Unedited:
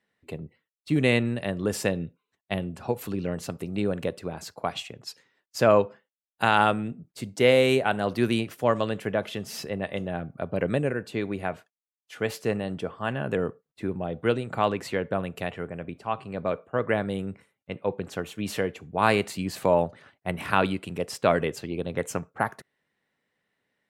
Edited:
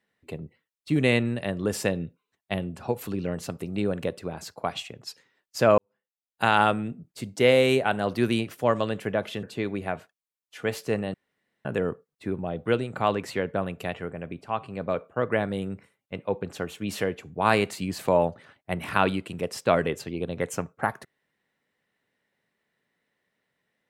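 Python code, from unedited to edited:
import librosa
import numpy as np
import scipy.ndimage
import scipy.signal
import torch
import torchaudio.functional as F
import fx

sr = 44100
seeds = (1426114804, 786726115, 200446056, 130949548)

y = fx.edit(x, sr, fx.fade_in_span(start_s=5.78, length_s=0.65, curve='qua'),
    fx.cut(start_s=9.43, length_s=1.57),
    fx.room_tone_fill(start_s=12.71, length_s=0.51), tone=tone)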